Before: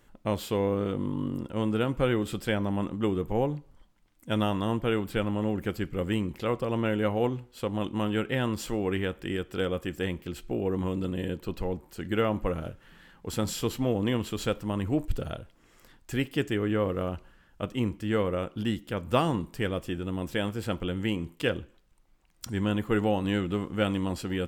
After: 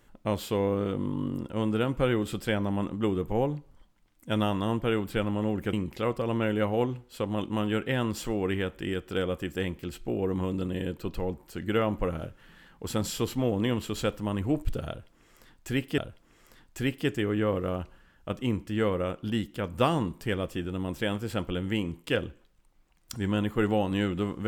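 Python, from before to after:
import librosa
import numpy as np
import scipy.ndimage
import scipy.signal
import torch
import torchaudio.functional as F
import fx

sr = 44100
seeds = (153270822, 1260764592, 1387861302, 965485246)

y = fx.edit(x, sr, fx.cut(start_s=5.73, length_s=0.43),
    fx.repeat(start_s=15.31, length_s=1.1, count=2), tone=tone)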